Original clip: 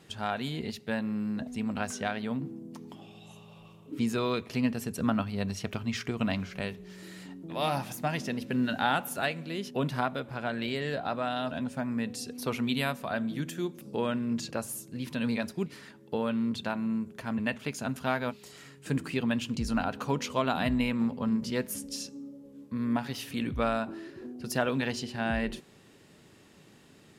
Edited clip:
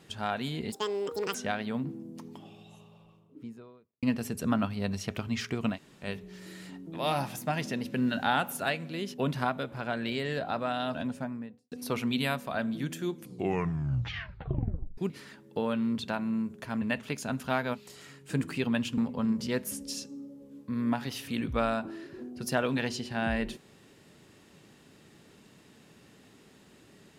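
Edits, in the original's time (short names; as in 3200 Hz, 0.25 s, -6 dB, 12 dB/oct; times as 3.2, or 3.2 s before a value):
0.72–1.91 speed 190%
2.74–4.59 studio fade out
6.3–6.61 room tone, crossfade 0.10 s
11.58–12.28 studio fade out
13.69 tape stop 1.85 s
19.54–21.01 cut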